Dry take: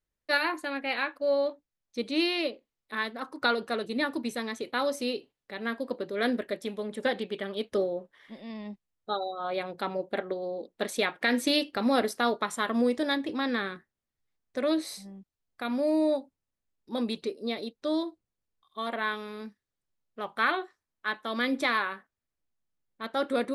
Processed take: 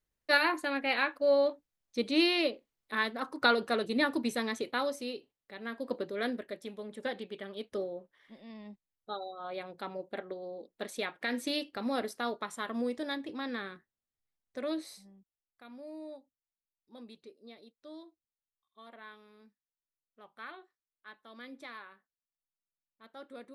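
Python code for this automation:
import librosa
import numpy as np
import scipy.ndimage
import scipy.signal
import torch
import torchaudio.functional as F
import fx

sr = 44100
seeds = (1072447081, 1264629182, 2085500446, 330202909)

y = fx.gain(x, sr, db=fx.line((4.59, 0.5), (5.04, -7.5), (5.72, -7.5), (5.95, -0.5), (6.36, -8.0), (14.79, -8.0), (15.65, -19.5)))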